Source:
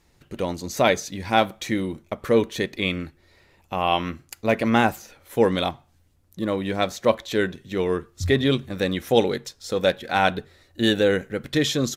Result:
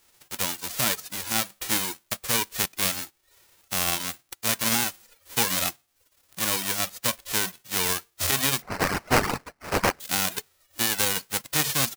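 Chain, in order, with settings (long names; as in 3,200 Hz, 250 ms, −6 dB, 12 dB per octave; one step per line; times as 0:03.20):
spectral envelope flattened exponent 0.1
0:08.62–0:10.00: sample-rate reduction 3,500 Hz, jitter 20%
brickwall limiter −9.5 dBFS, peak gain reduction 11 dB
reverb reduction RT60 0.53 s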